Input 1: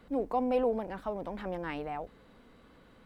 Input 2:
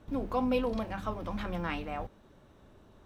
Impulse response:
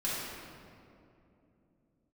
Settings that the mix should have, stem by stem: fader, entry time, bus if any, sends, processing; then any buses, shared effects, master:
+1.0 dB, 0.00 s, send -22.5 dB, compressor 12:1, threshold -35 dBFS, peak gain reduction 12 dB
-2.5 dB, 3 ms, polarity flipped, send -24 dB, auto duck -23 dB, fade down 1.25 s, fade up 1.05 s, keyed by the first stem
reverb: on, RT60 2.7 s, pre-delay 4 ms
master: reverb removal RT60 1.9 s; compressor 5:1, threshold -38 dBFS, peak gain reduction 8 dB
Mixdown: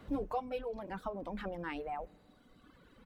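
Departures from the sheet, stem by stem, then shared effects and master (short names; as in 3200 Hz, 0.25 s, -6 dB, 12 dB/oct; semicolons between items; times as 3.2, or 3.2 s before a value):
stem 2: polarity flipped; master: missing compressor 5:1, threshold -38 dBFS, peak gain reduction 8 dB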